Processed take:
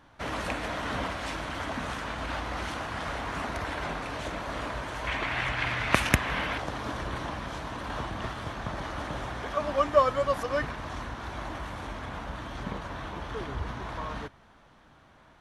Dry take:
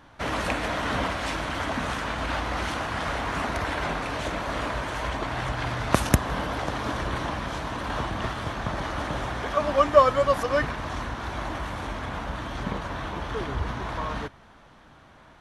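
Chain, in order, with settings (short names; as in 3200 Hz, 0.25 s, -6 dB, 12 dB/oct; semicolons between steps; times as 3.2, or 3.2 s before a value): 5.07–6.58 bell 2300 Hz +13 dB 1.2 oct; gain -5 dB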